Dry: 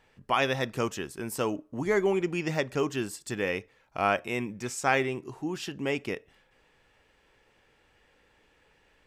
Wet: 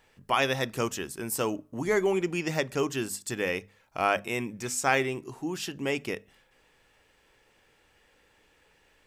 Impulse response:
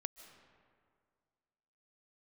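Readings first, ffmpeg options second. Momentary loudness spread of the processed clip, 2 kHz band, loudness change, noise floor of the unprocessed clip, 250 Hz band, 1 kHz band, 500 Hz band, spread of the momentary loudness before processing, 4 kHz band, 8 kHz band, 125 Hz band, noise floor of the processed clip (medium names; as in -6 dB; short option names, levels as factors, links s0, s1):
9 LU, +1.0 dB, +0.5 dB, -66 dBFS, -0.5 dB, 0.0 dB, 0.0 dB, 10 LU, +2.0 dB, +5.5 dB, -0.5 dB, -65 dBFS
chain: -af "highshelf=f=6200:g=9,bandreject=f=50:t=h:w=6,bandreject=f=100:t=h:w=6,bandreject=f=150:t=h:w=6,bandreject=f=200:t=h:w=6,bandreject=f=250:t=h:w=6"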